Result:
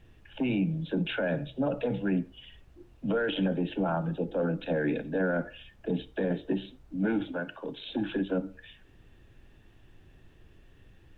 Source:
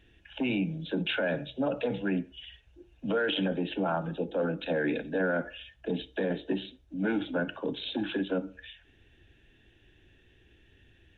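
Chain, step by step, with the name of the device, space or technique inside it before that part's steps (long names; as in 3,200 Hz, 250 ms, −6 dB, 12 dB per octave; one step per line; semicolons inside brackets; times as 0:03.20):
car interior (parametric band 140 Hz +5.5 dB 1 octave; high-shelf EQ 2,500 Hz −7.5 dB; brown noise bed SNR 24 dB)
0:07.32–0:07.90: low-shelf EQ 400 Hz −10.5 dB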